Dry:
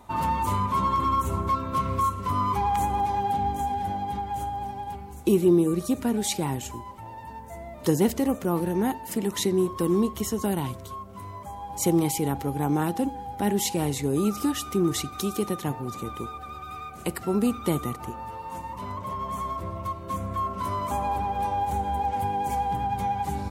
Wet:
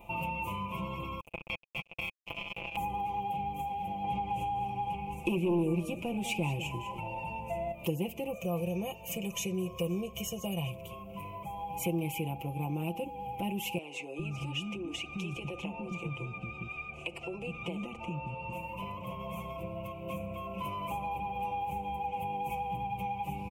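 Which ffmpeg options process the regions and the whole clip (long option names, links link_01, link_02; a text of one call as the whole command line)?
ffmpeg -i in.wav -filter_complex "[0:a]asettb=1/sr,asplit=3[link_01][link_02][link_03];[link_01]atrim=end=1.204[link_04];[link_02]atrim=start=1.2:end=2.77,asetpts=PTS-STARTPTS,afade=type=in:duration=0.004:curve=qsin,afade=type=out:start_time=1.566:duration=0.004:curve=qsin,highshelf=frequency=10000:gain=-10,acrusher=bits=2:mix=0:aa=0.5[link_05];[link_03]atrim=start=2.766[link_06];[link_04][link_05]acrossfade=duration=0.004:curve1=hsin:curve2=qsin[link_07];[link_07][link_06]acrossfade=duration=0.004:curve1=qsin:curve2=hsin,asettb=1/sr,asplit=3[link_08][link_09][link_10];[link_08]atrim=end=4.044[link_11];[link_09]atrim=start=4.04:end=7.72,asetpts=PTS-STARTPTS,afade=type=in:duration=0.004:curve=qsin,afade=type=out:start_time=3.676:duration=0.004:curve=qsin,lowpass=9600,aeval=exprs='0.299*sin(PI/2*1.58*val(0)/0.299)':channel_layout=same,aecho=1:1:200:0.211,atrim=end_sample=162288[link_12];[link_10]atrim=start=7.716[link_13];[link_11][link_12]acrossfade=duration=0.004:curve1=hsin:curve2=qsin[link_14];[link_14][link_13]acrossfade=duration=0.004:curve1=qsin:curve2=hsin,asettb=1/sr,asplit=3[link_15][link_16][link_17];[link_15]atrim=end=8.334[link_18];[link_16]atrim=start=8.33:end=10.7,asetpts=PTS-STARTPTS,afade=type=in:duration=0.004:curve=qsin,afade=type=out:start_time=2.366:duration=0.004:curve=qsin,equalizer=frequency=6400:width_type=o:width=0.46:gain=13,aecho=1:1:1.7:0.66,atrim=end_sample=104517[link_19];[link_17]atrim=start=10.696[link_20];[link_18][link_19]acrossfade=duration=0.004:curve1=hsin:curve2=qsin[link_21];[link_21][link_20]acrossfade=duration=0.004:curve1=qsin:curve2=hsin,asettb=1/sr,asplit=3[link_22][link_23][link_24];[link_22]atrim=end=13.784[link_25];[link_23]atrim=start=13.78:end=18.53,asetpts=PTS-STARTPTS,afade=type=in:duration=0.004:curve=qsin,afade=type=out:start_time=4.746:duration=0.004:curve=qsin,lowpass=frequency=7600:width=0.5412,lowpass=frequency=7600:width=1.3066,acompressor=threshold=-27dB:ratio=6:attack=3.2:release=140:knee=1:detection=peak,acrossover=split=280[link_26][link_27];[link_26]adelay=410[link_28];[link_28][link_27]amix=inputs=2:normalize=0,atrim=end_sample=209475[link_29];[link_24]atrim=start=18.526[link_30];[link_25][link_29]acrossfade=duration=0.004:curve1=hsin:curve2=qsin[link_31];[link_31][link_30]acrossfade=duration=0.004:curve1=qsin:curve2=hsin,firequalizer=gain_entry='entry(130,0);entry(320,-6);entry(540,1);entry(890,-3);entry(1700,-27);entry(2500,15);entry(3900,-17);entry(6000,-12);entry(8800,-10);entry(14000,1)':delay=0.05:min_phase=1,acompressor=threshold=-38dB:ratio=2.5,aecho=1:1:5.9:0.72" out.wav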